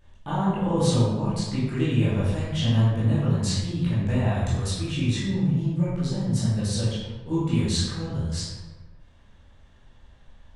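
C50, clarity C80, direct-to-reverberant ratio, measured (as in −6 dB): −1.0 dB, 1.5 dB, −11.0 dB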